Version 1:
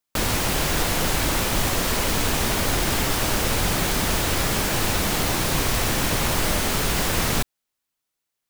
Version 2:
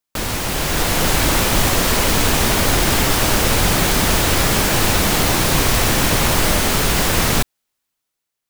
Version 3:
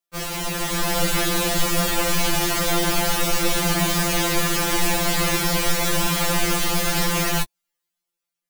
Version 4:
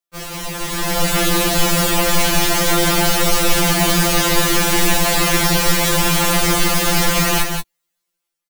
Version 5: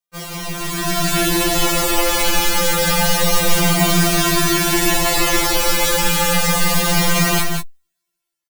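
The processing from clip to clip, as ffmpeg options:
-af "dynaudnorm=f=220:g=7:m=2.51"
-af "afftfilt=real='re*2.83*eq(mod(b,8),0)':imag='im*2.83*eq(mod(b,8),0)':win_size=2048:overlap=0.75,volume=0.75"
-filter_complex "[0:a]dynaudnorm=f=580:g=3:m=3.76,asplit=2[s0][s1];[s1]aecho=0:1:176:0.531[s2];[s0][s2]amix=inputs=2:normalize=0,volume=0.841"
-filter_complex "[0:a]asplit=2[s0][s1];[s1]adelay=2.1,afreqshift=-0.29[s2];[s0][s2]amix=inputs=2:normalize=1,volume=1.33"

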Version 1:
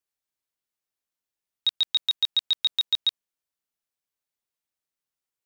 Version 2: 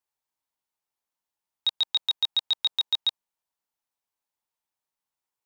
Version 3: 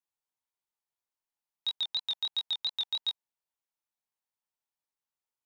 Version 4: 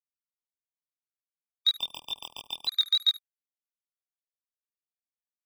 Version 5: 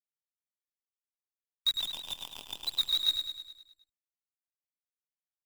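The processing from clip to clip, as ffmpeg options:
-af "equalizer=f=900:t=o:w=0.6:g=10.5,volume=0.841"
-af "flanger=delay=19:depth=6.1:speed=2.9,volume=0.668"
-filter_complex "[0:a]asplit=2[s0][s1];[s1]adelay=74,lowpass=f=1300:p=1,volume=0.251,asplit=2[s2][s3];[s3]adelay=74,lowpass=f=1300:p=1,volume=0.43,asplit=2[s4][s5];[s5]adelay=74,lowpass=f=1300:p=1,volume=0.43,asplit=2[s6][s7];[s7]adelay=74,lowpass=f=1300:p=1,volume=0.43[s8];[s0][s2][s4][s6][s8]amix=inputs=5:normalize=0,acrusher=bits=7:mix=0:aa=0.5,afftfilt=real='re*gt(sin(2*PI*0.56*pts/sr)*(1-2*mod(floor(b*sr/1024/1200),2)),0)':imag='im*gt(sin(2*PI*0.56*pts/sr)*(1-2*mod(floor(b*sr/1024/1200),2)),0)':win_size=1024:overlap=0.75,volume=2.66"
-filter_complex "[0:a]flanger=delay=0.7:depth=2.9:regen=-82:speed=1.8:shape=sinusoidal,acrusher=bits=7:dc=4:mix=0:aa=0.000001,asplit=2[s0][s1];[s1]aecho=0:1:104|208|312|416|520|624|728:0.473|0.256|0.138|0.0745|0.0402|0.0217|0.0117[s2];[s0][s2]amix=inputs=2:normalize=0"

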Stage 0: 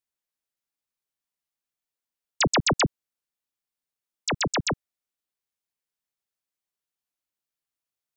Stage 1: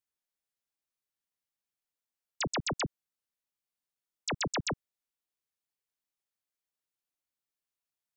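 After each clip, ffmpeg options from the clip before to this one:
-af "alimiter=level_in=1.06:limit=0.0631:level=0:latency=1,volume=0.944,volume=0.668"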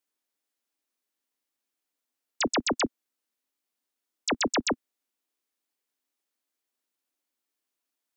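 -af "lowshelf=f=200:t=q:w=3:g=-8.5,volume=1.88"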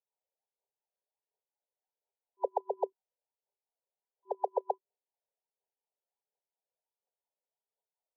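-af "afftfilt=real='re*between(b*sr/4096,380,1000)':imag='im*between(b*sr/4096,380,1000)':win_size=4096:overlap=0.75,aphaser=in_gain=1:out_gain=1:delay=2:decay=0.51:speed=1.4:type=triangular,volume=0.841"

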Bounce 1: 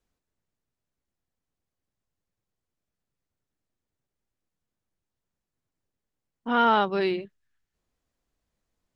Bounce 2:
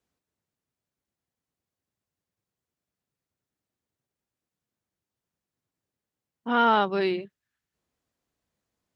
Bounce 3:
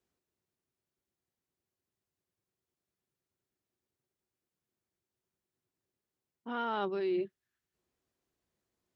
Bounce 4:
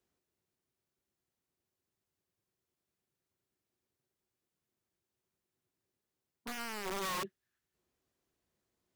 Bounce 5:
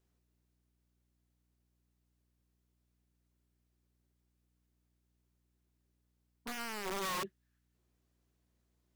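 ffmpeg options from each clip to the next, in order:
-af "highpass=81"
-af "equalizer=f=370:t=o:w=0.21:g=10,areverse,acompressor=threshold=0.0501:ratio=16,areverse,volume=0.668"
-af "alimiter=level_in=2.51:limit=0.0631:level=0:latency=1:release=18,volume=0.398,aeval=exprs='(mod(53.1*val(0)+1,2)-1)/53.1':c=same,volume=1.12"
-af "aeval=exprs='val(0)+0.000141*(sin(2*PI*60*n/s)+sin(2*PI*2*60*n/s)/2+sin(2*PI*3*60*n/s)/3+sin(2*PI*4*60*n/s)/4+sin(2*PI*5*60*n/s)/5)':c=same"

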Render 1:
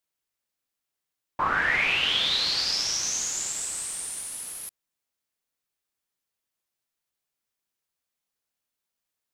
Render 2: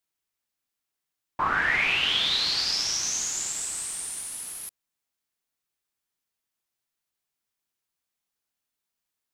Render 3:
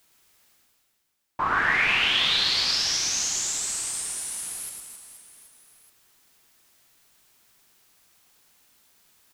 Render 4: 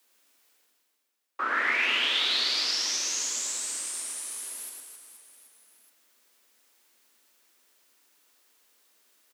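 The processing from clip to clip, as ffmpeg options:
-af "equalizer=f=530:w=4.9:g=-5"
-af "areverse,acompressor=mode=upward:threshold=0.00562:ratio=2.5,areverse,aecho=1:1:110|264|479.6|781.4|1204:0.631|0.398|0.251|0.158|0.1"
-filter_complex "[0:a]afreqshift=220,asplit=2[s0][s1];[s1]adelay=150,highpass=300,lowpass=3400,asoftclip=type=hard:threshold=0.106,volume=0.355[s2];[s0][s2]amix=inputs=2:normalize=0,volume=0.631"

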